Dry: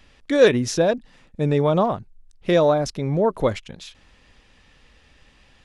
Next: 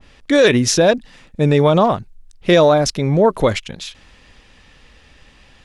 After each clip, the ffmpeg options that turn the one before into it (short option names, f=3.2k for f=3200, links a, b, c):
-af "alimiter=level_in=9.5dB:limit=-1dB:release=50:level=0:latency=1,adynamicequalizer=threshold=0.0708:dfrequency=1500:dqfactor=0.7:tfrequency=1500:tqfactor=0.7:attack=5:release=100:ratio=0.375:range=2.5:mode=boostabove:tftype=highshelf,volume=-3dB"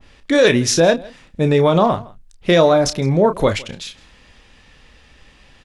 -filter_complex "[0:a]asplit=2[a][b];[b]adelay=30,volume=-9.5dB[c];[a][c]amix=inputs=2:normalize=0,aecho=1:1:162:0.0708,volume=-1dB"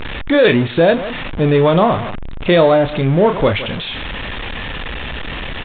-af "aeval=exprs='val(0)+0.5*0.119*sgn(val(0))':c=same,aresample=8000,aresample=44100"